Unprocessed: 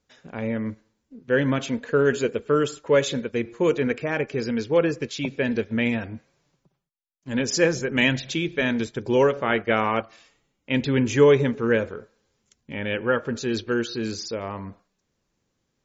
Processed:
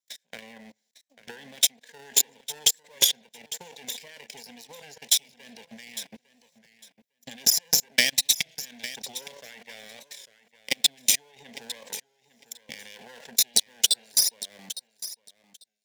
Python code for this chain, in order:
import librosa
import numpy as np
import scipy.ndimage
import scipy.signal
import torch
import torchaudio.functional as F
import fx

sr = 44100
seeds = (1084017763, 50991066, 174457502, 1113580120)

p1 = fx.lower_of_two(x, sr, delay_ms=0.55)
p2 = fx.low_shelf(p1, sr, hz=390.0, db=-9.0)
p3 = fx.over_compress(p2, sr, threshold_db=-31.0, ratio=-1.0)
p4 = p2 + (p3 * 10.0 ** (1.0 / 20.0))
p5 = scipy.signal.sosfilt(scipy.signal.butter(2, 43.0, 'highpass', fs=sr, output='sos'), p4)
p6 = fx.tilt_eq(p5, sr, slope=3.5)
p7 = fx.fixed_phaser(p6, sr, hz=340.0, stages=6)
p8 = fx.level_steps(p7, sr, step_db=22)
p9 = fx.transient(p8, sr, attack_db=10, sustain_db=-9)
p10 = p9 + fx.echo_feedback(p9, sr, ms=854, feedback_pct=15, wet_db=-15.0, dry=0)
p11 = fx.record_warp(p10, sr, rpm=33.33, depth_cents=100.0)
y = p11 * 10.0 ** (-3.5 / 20.0)